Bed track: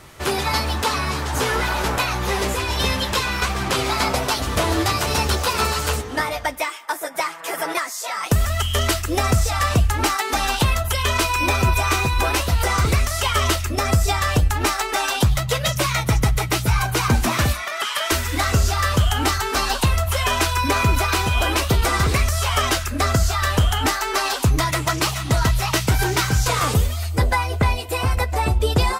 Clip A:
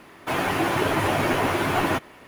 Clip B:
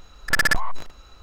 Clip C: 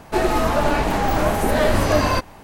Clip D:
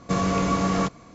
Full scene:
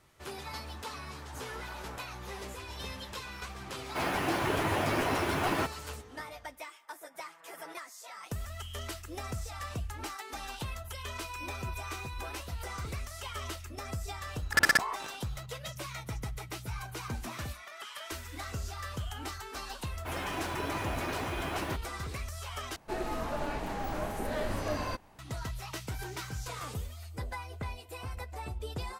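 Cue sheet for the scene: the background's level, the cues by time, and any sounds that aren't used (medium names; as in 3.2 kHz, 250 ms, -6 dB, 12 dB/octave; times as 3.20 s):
bed track -20 dB
3.68 s: add A -7.5 dB
14.24 s: add B -4 dB + high-pass 170 Hz
19.78 s: add A -13.5 dB
22.76 s: replace with C -16 dB
not used: D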